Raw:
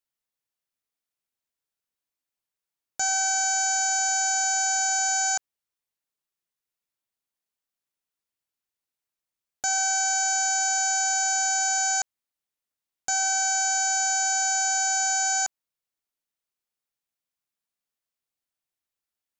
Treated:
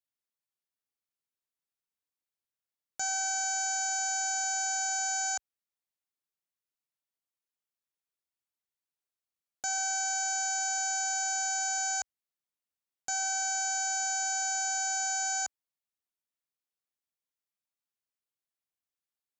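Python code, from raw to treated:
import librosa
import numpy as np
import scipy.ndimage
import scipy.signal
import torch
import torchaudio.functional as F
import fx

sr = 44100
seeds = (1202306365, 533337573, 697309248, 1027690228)

y = scipy.signal.sosfilt(scipy.signal.butter(2, 49.0, 'highpass', fs=sr, output='sos'), x)
y = F.gain(torch.from_numpy(y), -7.0).numpy()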